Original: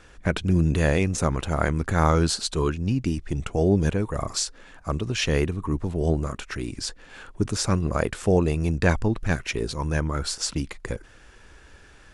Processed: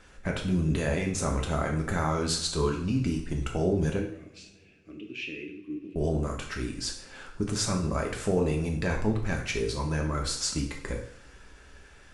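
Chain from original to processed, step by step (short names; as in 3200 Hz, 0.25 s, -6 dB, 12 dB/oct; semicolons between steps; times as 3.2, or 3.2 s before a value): limiter -14 dBFS, peak gain reduction 7.5 dB; 3.99–5.96 double band-pass 900 Hz, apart 3 oct; two-slope reverb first 0.56 s, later 3.2 s, from -27 dB, DRR 0.5 dB; gain -4.5 dB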